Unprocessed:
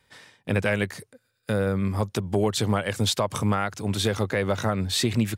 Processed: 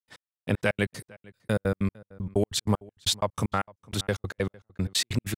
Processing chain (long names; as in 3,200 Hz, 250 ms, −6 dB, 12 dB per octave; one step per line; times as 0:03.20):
gate pattern ".x....x.x.x" 191 BPM −60 dB
slap from a distant wall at 78 metres, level −23 dB